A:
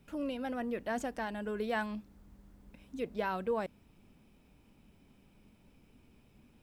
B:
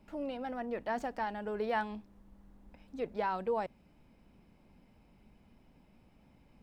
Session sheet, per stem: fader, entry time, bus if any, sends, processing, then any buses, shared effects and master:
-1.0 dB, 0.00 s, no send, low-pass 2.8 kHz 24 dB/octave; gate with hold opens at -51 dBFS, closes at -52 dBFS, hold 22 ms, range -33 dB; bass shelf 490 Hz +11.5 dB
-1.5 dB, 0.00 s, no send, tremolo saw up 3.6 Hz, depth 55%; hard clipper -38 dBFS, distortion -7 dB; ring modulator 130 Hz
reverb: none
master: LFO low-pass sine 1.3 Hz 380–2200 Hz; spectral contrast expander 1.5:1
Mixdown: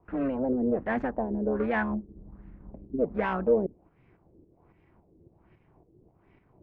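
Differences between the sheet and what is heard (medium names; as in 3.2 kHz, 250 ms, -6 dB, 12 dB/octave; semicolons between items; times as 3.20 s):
stem B -1.5 dB -> +5.5 dB; master: missing spectral contrast expander 1.5:1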